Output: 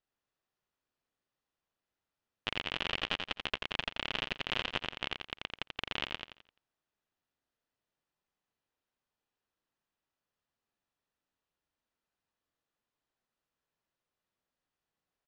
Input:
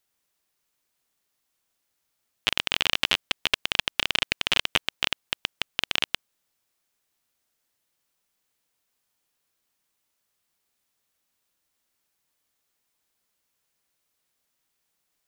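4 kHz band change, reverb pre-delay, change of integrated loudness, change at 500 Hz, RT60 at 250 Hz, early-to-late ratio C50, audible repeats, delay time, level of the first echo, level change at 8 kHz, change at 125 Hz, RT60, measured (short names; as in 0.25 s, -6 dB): -11.5 dB, none, -10.5 dB, -5.0 dB, none, none, 4, 86 ms, -5.5 dB, -20.0 dB, -4.0 dB, none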